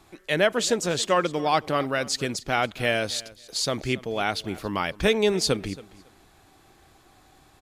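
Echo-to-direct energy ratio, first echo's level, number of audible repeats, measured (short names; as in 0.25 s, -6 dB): -20.0 dB, -20.0 dB, 2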